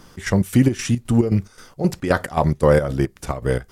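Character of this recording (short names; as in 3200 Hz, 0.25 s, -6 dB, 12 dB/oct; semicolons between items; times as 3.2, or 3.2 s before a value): chopped level 3.8 Hz, depth 65%, duty 60%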